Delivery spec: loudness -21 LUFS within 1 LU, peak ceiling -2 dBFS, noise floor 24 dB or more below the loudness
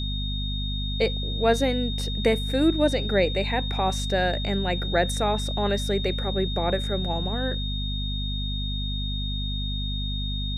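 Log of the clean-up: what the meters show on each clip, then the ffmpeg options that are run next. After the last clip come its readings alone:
hum 50 Hz; highest harmonic 250 Hz; hum level -27 dBFS; steady tone 3.7 kHz; tone level -32 dBFS; loudness -26.0 LUFS; peak level -8.5 dBFS; loudness target -21.0 LUFS
-> -af "bandreject=f=50:t=h:w=6,bandreject=f=100:t=h:w=6,bandreject=f=150:t=h:w=6,bandreject=f=200:t=h:w=6,bandreject=f=250:t=h:w=6"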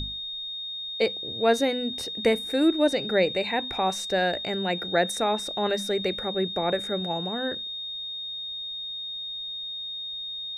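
hum not found; steady tone 3.7 kHz; tone level -32 dBFS
-> -af "bandreject=f=3700:w=30"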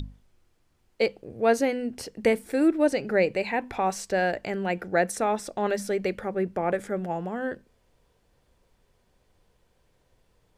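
steady tone not found; loudness -27.0 LUFS; peak level -9.5 dBFS; loudness target -21.0 LUFS
-> -af "volume=2"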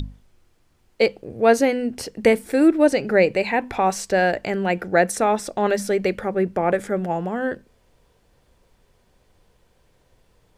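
loudness -21.0 LUFS; peak level -3.5 dBFS; noise floor -62 dBFS

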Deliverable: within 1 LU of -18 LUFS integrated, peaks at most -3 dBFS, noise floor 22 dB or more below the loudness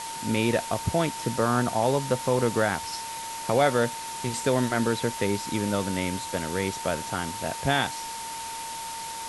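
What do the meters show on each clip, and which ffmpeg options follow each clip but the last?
steady tone 910 Hz; tone level -35 dBFS; noise floor -36 dBFS; noise floor target -49 dBFS; loudness -27.0 LUFS; peak level -9.5 dBFS; loudness target -18.0 LUFS
-> -af "bandreject=f=910:w=30"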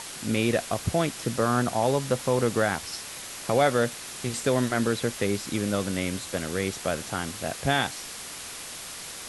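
steady tone not found; noise floor -39 dBFS; noise floor target -50 dBFS
-> -af "afftdn=nr=11:nf=-39"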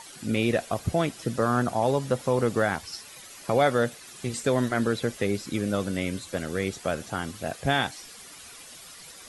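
noise floor -46 dBFS; noise floor target -49 dBFS
-> -af "afftdn=nr=6:nf=-46"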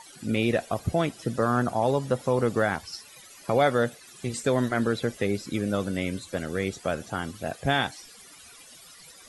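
noise floor -50 dBFS; loudness -27.5 LUFS; peak level -10.5 dBFS; loudness target -18.0 LUFS
-> -af "volume=2.99,alimiter=limit=0.708:level=0:latency=1"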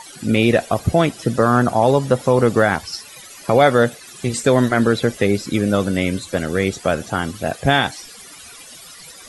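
loudness -18.0 LUFS; peak level -3.0 dBFS; noise floor -40 dBFS

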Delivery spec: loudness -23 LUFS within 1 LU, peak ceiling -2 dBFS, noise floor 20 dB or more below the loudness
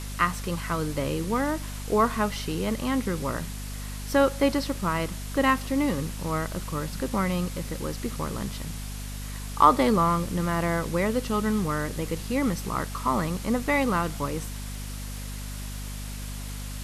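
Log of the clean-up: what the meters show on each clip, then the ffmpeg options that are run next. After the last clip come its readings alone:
hum 50 Hz; highest harmonic 250 Hz; hum level -33 dBFS; noise floor -36 dBFS; noise floor target -48 dBFS; loudness -27.5 LUFS; peak level -4.5 dBFS; loudness target -23.0 LUFS
-> -af "bandreject=f=50:t=h:w=4,bandreject=f=100:t=h:w=4,bandreject=f=150:t=h:w=4,bandreject=f=200:t=h:w=4,bandreject=f=250:t=h:w=4"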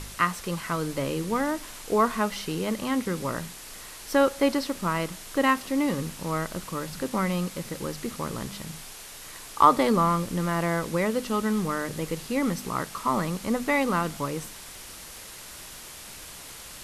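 hum not found; noise floor -43 dBFS; noise floor target -47 dBFS
-> -af "afftdn=nr=6:nf=-43"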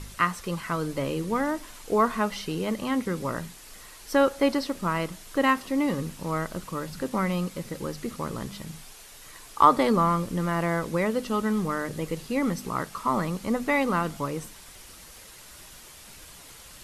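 noise floor -48 dBFS; loudness -27.0 LUFS; peak level -4.5 dBFS; loudness target -23.0 LUFS
-> -af "volume=1.58,alimiter=limit=0.794:level=0:latency=1"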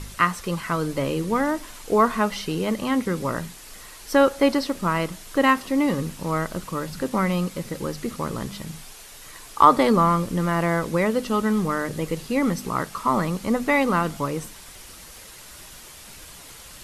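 loudness -23.0 LUFS; peak level -2.0 dBFS; noise floor -44 dBFS

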